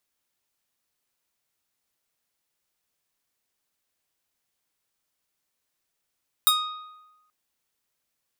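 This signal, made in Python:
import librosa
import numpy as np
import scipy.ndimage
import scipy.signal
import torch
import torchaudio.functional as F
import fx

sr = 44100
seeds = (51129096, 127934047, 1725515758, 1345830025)

y = fx.pluck(sr, length_s=0.83, note=87, decay_s=1.09, pick=0.48, brightness='bright')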